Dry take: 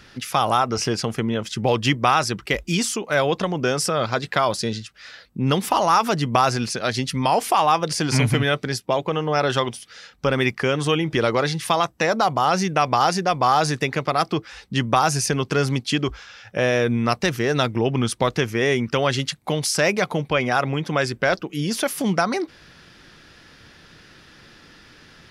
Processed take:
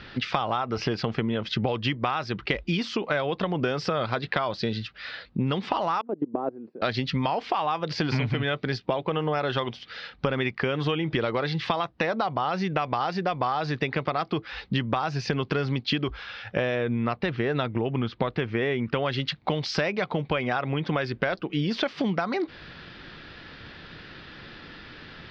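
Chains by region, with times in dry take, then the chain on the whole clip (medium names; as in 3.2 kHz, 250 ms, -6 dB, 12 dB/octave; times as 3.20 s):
6.01–6.82 s: level held to a coarse grid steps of 21 dB + ladder band-pass 370 Hz, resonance 25% + peaking EQ 340 Hz +12.5 dB 2.7 oct
16.75–19.06 s: de-esser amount 30% + Gaussian low-pass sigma 1.8 samples
whole clip: steep low-pass 4.4 kHz 36 dB/octave; compression 12:1, threshold -27 dBFS; trim +4.5 dB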